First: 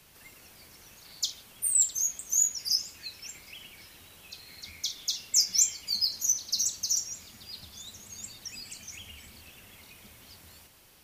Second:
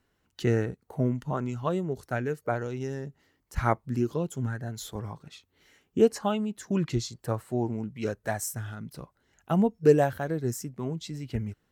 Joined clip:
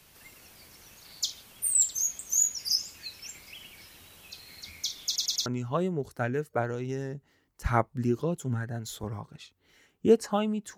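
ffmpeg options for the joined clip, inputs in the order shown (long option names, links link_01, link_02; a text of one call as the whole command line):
ffmpeg -i cue0.wav -i cue1.wav -filter_complex "[0:a]apad=whole_dur=10.77,atrim=end=10.77,asplit=4[link_01][link_02][link_03][link_04];[link_01]atrim=end=5.162[link_05];[link_02]atrim=start=5.058:end=5.162[link_06];[link_03]atrim=start=5.058:end=5.162[link_07];[link_04]atrim=start=5.058:end=5.162[link_08];[1:a]atrim=start=1.378:end=6.69[link_09];[link_05][link_06]acrossfade=duration=0.004:curve1=hsin:curve2=hsin[link_10];[link_10][link_07]acrossfade=duration=0.004:curve1=hsin:curve2=hsin[link_11];[link_11][link_08]acrossfade=duration=0.004:curve1=hsin:curve2=hsin[link_12];[link_12][link_09]acrossfade=duration=0.004:curve1=hsin:curve2=hsin" out.wav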